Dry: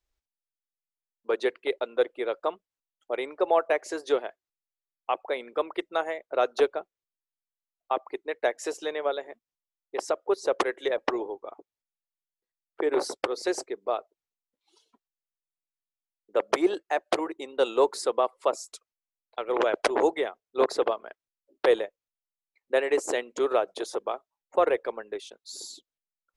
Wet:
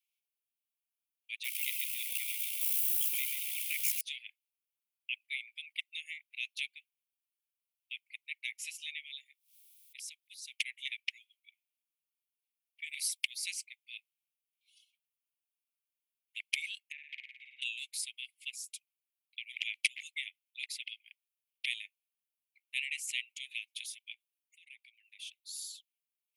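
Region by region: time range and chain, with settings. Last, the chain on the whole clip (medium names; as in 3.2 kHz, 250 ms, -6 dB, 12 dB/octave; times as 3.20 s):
1.44–4.01 s: zero-crossing glitches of -24.5 dBFS + AM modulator 63 Hz, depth 50% + frequency-shifting echo 135 ms, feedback 58%, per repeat -60 Hz, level -5.5 dB
9.17–10.53 s: high-order bell 2.3 kHz -8 dB 1 oct + upward compressor, threshold -37 dBFS
12.86–13.54 s: upward compressor, threshold -44 dBFS + treble shelf 5.6 kHz +9 dB
16.92–17.62 s: Butterworth band-pass 590 Hz, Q 0.55 + peaking EQ 1 kHz +5.5 dB 2.3 oct + flutter echo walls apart 9.4 m, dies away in 1 s
24.13–25.22 s: peaking EQ 350 Hz -13 dB 2.7 oct + compression 4:1, threshold -46 dBFS
whole clip: steep high-pass 2.2 kHz 96 dB/octave; high-order bell 5.5 kHz -9.5 dB 1.3 oct; trim +5 dB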